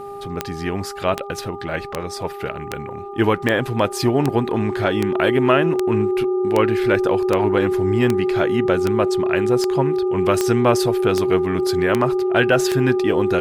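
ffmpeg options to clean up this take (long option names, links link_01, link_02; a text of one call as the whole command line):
ffmpeg -i in.wav -af "adeclick=threshold=4,bandreject=frequency=402:width_type=h:width=4,bandreject=frequency=804:width_type=h:width=4,bandreject=frequency=1206:width_type=h:width=4,bandreject=frequency=370:width=30" out.wav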